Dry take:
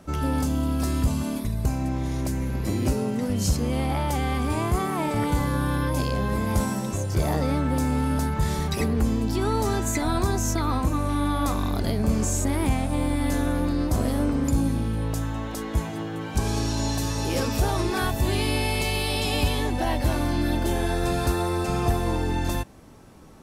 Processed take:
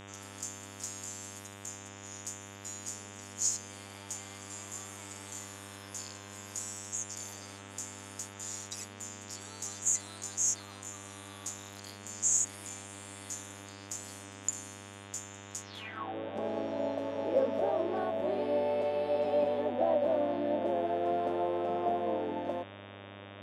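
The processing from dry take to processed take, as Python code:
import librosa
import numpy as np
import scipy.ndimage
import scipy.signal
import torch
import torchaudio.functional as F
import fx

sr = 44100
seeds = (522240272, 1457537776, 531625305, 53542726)

y = fx.filter_sweep_bandpass(x, sr, from_hz=6900.0, to_hz=590.0, start_s=15.63, end_s=16.15, q=7.3)
y = fx.low_shelf_res(y, sr, hz=150.0, db=-13.0, q=3.0)
y = fx.dmg_buzz(y, sr, base_hz=100.0, harmonics=37, level_db=-56.0, tilt_db=-3, odd_only=False)
y = y * 10.0 ** (7.0 / 20.0)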